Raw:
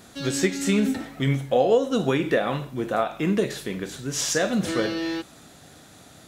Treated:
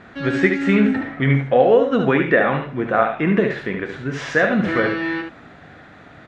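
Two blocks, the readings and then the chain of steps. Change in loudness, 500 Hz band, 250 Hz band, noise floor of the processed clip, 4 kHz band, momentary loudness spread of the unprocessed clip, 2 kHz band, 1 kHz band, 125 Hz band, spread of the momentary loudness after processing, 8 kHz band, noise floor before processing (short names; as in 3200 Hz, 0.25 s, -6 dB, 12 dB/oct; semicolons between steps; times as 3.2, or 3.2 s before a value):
+6.0 dB, +6.0 dB, +5.5 dB, -44 dBFS, -3.5 dB, 9 LU, +10.5 dB, +7.0 dB, +6.0 dB, 11 LU, under -15 dB, -50 dBFS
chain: synth low-pass 1900 Hz, resonance Q 2; echo 72 ms -6.5 dB; gain +4.5 dB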